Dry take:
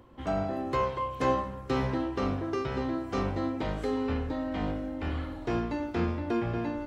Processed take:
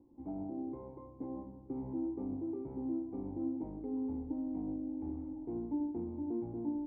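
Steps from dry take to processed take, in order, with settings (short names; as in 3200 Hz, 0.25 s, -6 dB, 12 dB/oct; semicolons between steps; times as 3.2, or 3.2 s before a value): limiter -22.5 dBFS, peak gain reduction 8 dB; vocal tract filter u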